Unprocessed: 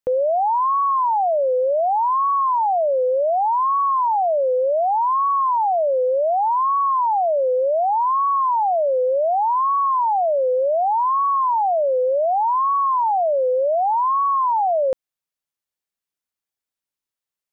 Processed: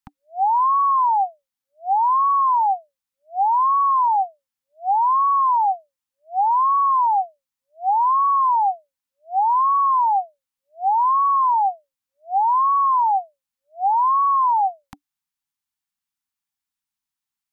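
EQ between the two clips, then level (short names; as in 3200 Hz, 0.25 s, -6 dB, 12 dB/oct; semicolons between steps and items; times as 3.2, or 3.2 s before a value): dynamic EQ 400 Hz, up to +5 dB, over -33 dBFS, Q 1.4; Chebyshev band-stop 290–770 Hz, order 5; +1.0 dB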